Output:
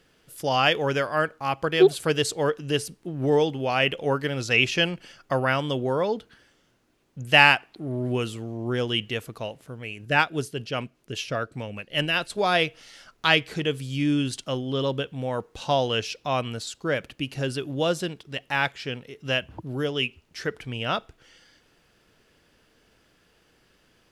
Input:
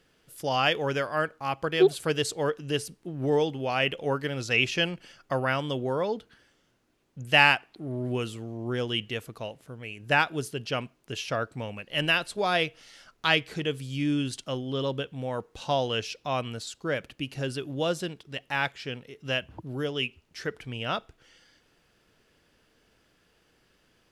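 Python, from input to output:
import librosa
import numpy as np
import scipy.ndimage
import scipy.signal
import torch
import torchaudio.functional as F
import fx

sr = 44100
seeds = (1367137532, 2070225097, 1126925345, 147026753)

y = fx.rotary(x, sr, hz=5.0, at=(10.05, 12.3))
y = y * 10.0 ** (3.5 / 20.0)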